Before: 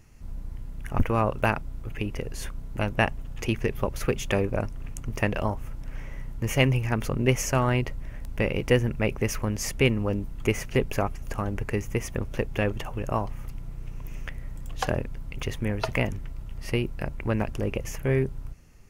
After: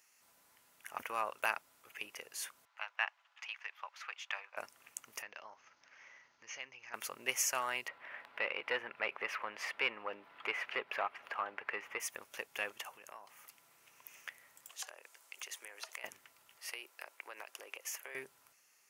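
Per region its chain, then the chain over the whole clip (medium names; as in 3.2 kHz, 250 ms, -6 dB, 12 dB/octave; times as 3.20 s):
2.65–4.57 s: high-pass 820 Hz 24 dB/octave + distance through air 210 m
5.22–6.94 s: rippled Chebyshev low-pass 6.5 kHz, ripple 3 dB + compression 3:1, threshold -35 dBFS
7.88–12.00 s: overdrive pedal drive 16 dB, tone 6.2 kHz, clips at -8.5 dBFS + distance through air 460 m + upward compressor, threshold -26 dBFS
12.96–13.79 s: high-pass 110 Hz 24 dB/octave + compression 5:1, threshold -34 dBFS
14.70–16.04 s: high-pass 350 Hz 24 dB/octave + peaking EQ 7.4 kHz +6.5 dB 0.99 oct + compression 10:1, threshold -35 dBFS
16.57–18.15 s: high-pass 340 Hz 24 dB/octave + compression 5:1, threshold -31 dBFS
whole clip: high-pass 990 Hz 12 dB/octave; treble shelf 5.5 kHz +7.5 dB; trim -6.5 dB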